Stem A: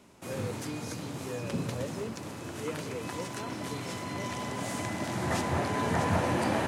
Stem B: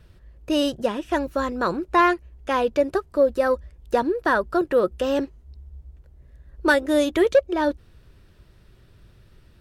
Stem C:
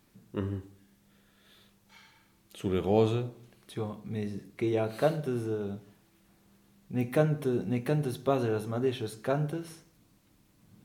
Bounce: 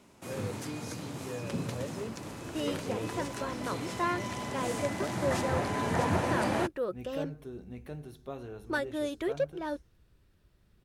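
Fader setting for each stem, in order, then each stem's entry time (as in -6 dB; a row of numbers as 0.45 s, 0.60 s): -1.5 dB, -13.5 dB, -14.0 dB; 0.00 s, 2.05 s, 0.00 s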